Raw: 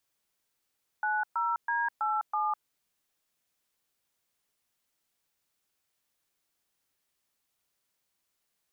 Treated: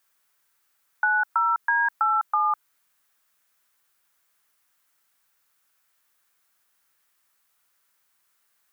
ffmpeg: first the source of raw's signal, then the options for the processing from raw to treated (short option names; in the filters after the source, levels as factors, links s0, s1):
-f lavfi -i "aevalsrc='0.0355*clip(min(mod(t,0.326),0.204-mod(t,0.326))/0.002,0,1)*(eq(floor(t/0.326),0)*(sin(2*PI*852*mod(t,0.326))+sin(2*PI*1477*mod(t,0.326)))+eq(floor(t/0.326),1)*(sin(2*PI*941*mod(t,0.326))+sin(2*PI*1336*mod(t,0.326)))+eq(floor(t/0.326),2)*(sin(2*PI*941*mod(t,0.326))+sin(2*PI*1633*mod(t,0.326)))+eq(floor(t/0.326),3)*(sin(2*PI*852*mod(t,0.326))+sin(2*PI*1336*mod(t,0.326)))+eq(floor(t/0.326),4)*(sin(2*PI*852*mod(t,0.326))+sin(2*PI*1209*mod(t,0.326))))':d=1.63:s=44100"
-filter_complex "[0:a]equalizer=f=1400:t=o:w=1.6:g=13,crystalizer=i=1.5:c=0,acrossover=split=470|3000[s0][s1][s2];[s1]acompressor=threshold=0.1:ratio=6[s3];[s0][s3][s2]amix=inputs=3:normalize=0"